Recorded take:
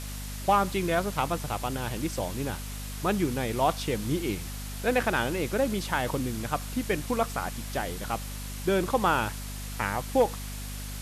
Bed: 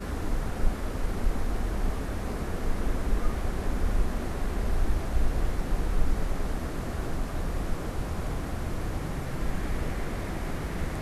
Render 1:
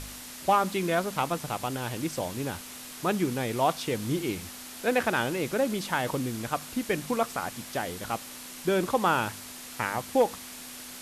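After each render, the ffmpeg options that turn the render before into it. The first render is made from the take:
-af "bandreject=f=50:t=h:w=4,bandreject=f=100:t=h:w=4,bandreject=f=150:t=h:w=4,bandreject=f=200:t=h:w=4"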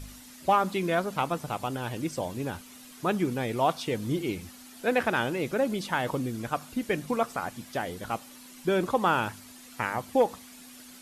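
-af "afftdn=nr=10:nf=-43"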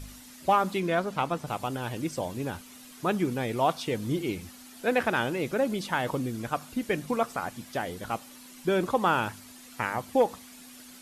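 -filter_complex "[0:a]asettb=1/sr,asplit=3[s0][s1][s2];[s0]atrim=end=0.804[s3];[s1]atrim=start=0.8:end=1.47,asetpts=PTS-STARTPTS,afade=t=in:d=0.004:c=qsin,afade=t=out:st=0.666:d=0.004:c=qsin,highshelf=f=9400:g=-9.5[s4];[s2]atrim=start=1.466[s5];[s3][s4]acrossfade=d=0.004:c1=hsin:c2=qsin[s6];[s6][s5]acrossfade=d=0.004:c1=qsin:c2=hsin"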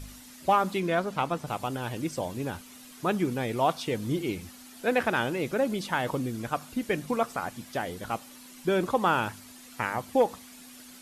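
-af anull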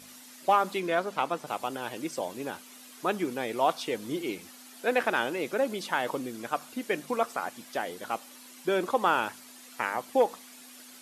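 -af "highpass=300"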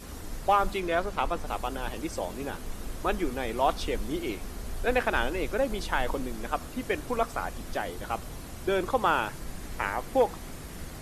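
-filter_complex "[1:a]volume=0.335[s0];[0:a][s0]amix=inputs=2:normalize=0"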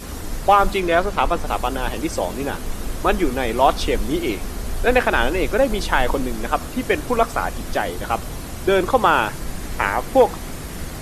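-af "volume=3.16,alimiter=limit=0.708:level=0:latency=1"

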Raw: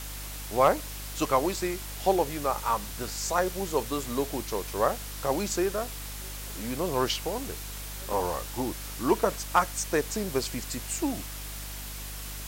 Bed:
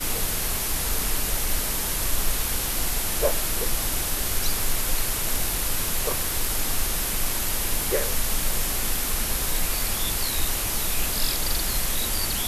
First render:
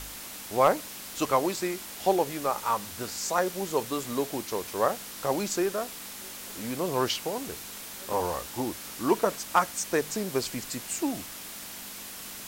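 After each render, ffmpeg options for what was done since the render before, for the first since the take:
-af "bandreject=f=50:t=h:w=4,bandreject=f=100:t=h:w=4,bandreject=f=150:t=h:w=4"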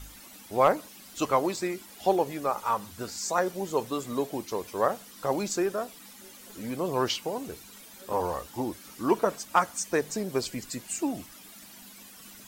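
-af "afftdn=nr=12:nf=-42"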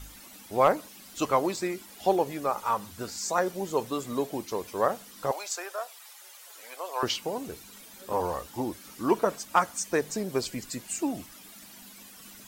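-filter_complex "[0:a]asettb=1/sr,asplit=3[s0][s1][s2];[s0]atrim=end=5.314[s3];[s1]atrim=start=5.31:end=7.03,asetpts=PTS-STARTPTS,afade=t=in:d=0.004:c=qsin,afade=t=out:st=1.716:d=0.004:c=qsin,highpass=f=620:w=0.5412,highpass=f=620:w=1.3066[s4];[s2]atrim=start=7.026[s5];[s3][s4]acrossfade=d=0.004:c1=hsin:c2=qsin[s6];[s6][s5]acrossfade=d=0.004:c1=qsin:c2=hsin"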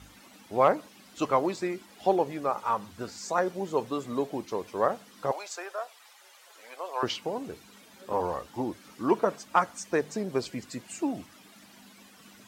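-af "highpass=87,aemphasis=mode=reproduction:type=50kf"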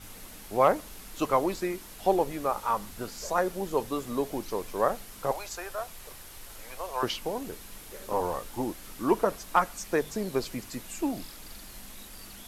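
-filter_complex "[1:a]volume=0.0891[s0];[0:a][s0]amix=inputs=2:normalize=0"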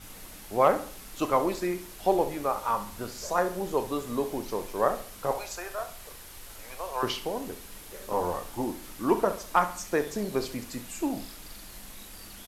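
-filter_complex "[0:a]asplit=2[s0][s1];[s1]adelay=34,volume=0.237[s2];[s0][s2]amix=inputs=2:normalize=0,aecho=1:1:67|134|201|268:0.224|0.0873|0.0341|0.0133"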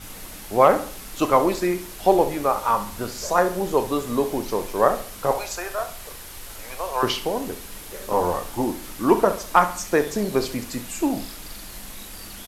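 -af "volume=2.24,alimiter=limit=0.708:level=0:latency=1"

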